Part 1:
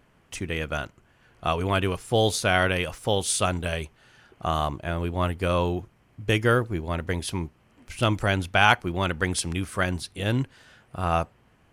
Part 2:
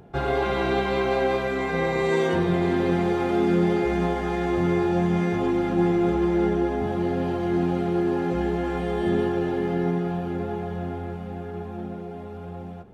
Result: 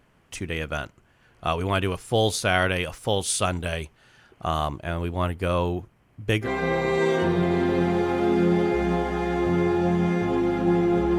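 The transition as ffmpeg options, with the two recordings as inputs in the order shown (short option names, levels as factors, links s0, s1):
-filter_complex "[0:a]asettb=1/sr,asplit=3[s0][s1][s2];[s0]atrim=end=5.224[s3];[s1]atrim=start=5.22:end=6.49,asetpts=PTS-STARTPTS,afade=t=in:d=0.004:c=qsin,afade=t=out:st=1.266:d=0.004:c=qsin,equalizer=f=5200:t=o:w=2:g=-3[s4];[s2]atrim=start=6.486[s5];[s3][s4]acrossfade=d=0.004:c1=hsin:c2=qsin[s6];[s6][s5]acrossfade=d=0.004:c1=qsin:c2=hsin,apad=whole_dur=11.18,atrim=end=11.18,atrim=end=6.49,asetpts=PTS-STARTPTS[s7];[1:a]atrim=start=1.52:end=6.29,asetpts=PTS-STARTPTS[s8];[s7][s8]acrossfade=d=0.08:c1=tri:c2=tri"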